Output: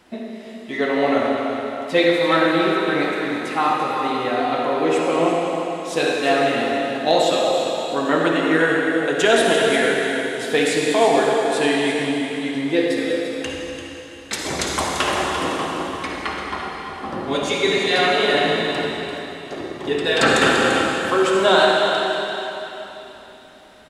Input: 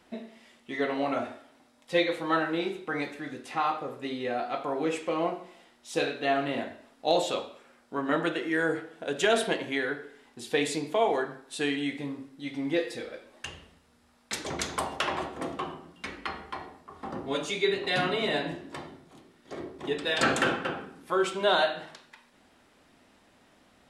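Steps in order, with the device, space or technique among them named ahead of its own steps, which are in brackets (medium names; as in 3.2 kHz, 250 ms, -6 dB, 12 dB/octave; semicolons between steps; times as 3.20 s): 17.81–18.35 s: high-pass 280 Hz 12 dB/octave; cave (delay 342 ms -9.5 dB; reverberation RT60 3.3 s, pre-delay 50 ms, DRR -1 dB); trim +7 dB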